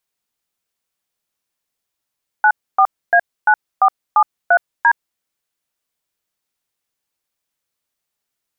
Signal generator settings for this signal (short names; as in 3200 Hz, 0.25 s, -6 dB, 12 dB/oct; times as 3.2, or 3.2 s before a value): DTMF "94A9473D", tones 68 ms, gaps 0.276 s, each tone -10.5 dBFS